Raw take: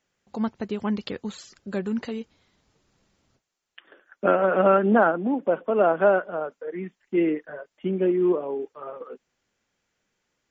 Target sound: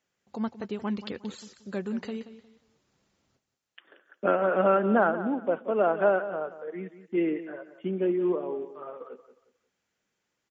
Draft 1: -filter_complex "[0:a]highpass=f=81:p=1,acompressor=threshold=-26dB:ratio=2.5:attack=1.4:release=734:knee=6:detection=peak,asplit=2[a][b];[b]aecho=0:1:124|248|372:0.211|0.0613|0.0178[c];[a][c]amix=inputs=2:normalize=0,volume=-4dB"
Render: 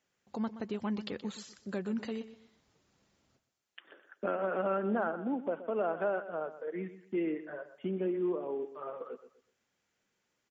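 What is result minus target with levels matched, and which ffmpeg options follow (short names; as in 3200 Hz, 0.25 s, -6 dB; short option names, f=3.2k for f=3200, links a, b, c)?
compressor: peak gain reduction +10.5 dB; echo 55 ms early
-filter_complex "[0:a]highpass=f=81:p=1,asplit=2[a][b];[b]aecho=0:1:179|358|537:0.211|0.0613|0.0178[c];[a][c]amix=inputs=2:normalize=0,volume=-4dB"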